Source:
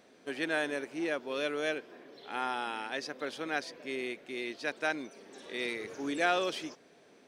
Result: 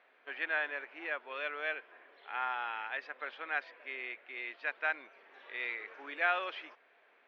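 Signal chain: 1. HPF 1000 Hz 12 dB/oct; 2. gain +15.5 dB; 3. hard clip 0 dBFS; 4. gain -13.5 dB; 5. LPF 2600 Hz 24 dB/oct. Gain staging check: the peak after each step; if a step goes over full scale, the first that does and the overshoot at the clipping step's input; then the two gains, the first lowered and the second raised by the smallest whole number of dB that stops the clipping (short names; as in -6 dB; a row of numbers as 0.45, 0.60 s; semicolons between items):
-17.0, -1.5, -1.5, -15.0, -16.0 dBFS; no overload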